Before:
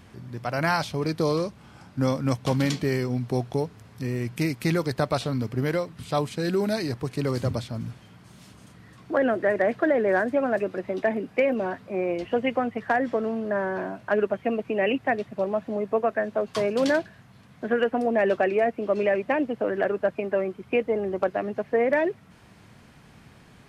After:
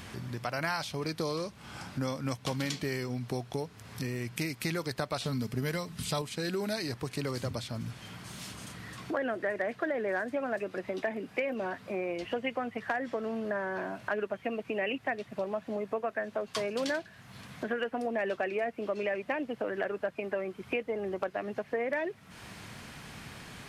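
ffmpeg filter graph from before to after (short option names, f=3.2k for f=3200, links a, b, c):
-filter_complex "[0:a]asettb=1/sr,asplit=3[a][b][c];[a]atrim=end=5.244[d];[b]atrim=start=5.24:end=6.22,asetpts=PTS-STARTPTS,afade=t=in:d=0.004:c=qsin,afade=t=out:st=0.976:d=0.004:c=qsin,bass=f=250:g=7,treble=f=4k:g=6,aecho=1:1:4.7:0.36,atrim=end_sample=43218[e];[c]atrim=start=6.216[f];[d][e]acrossfade=d=0.004:c1=hsin:c2=qsin[g];[g][f]acrossfade=d=0.004:c1=qsin:c2=hsin,tiltshelf=f=1.1k:g=-4,acompressor=threshold=-44dB:ratio=2.5,volume=7dB"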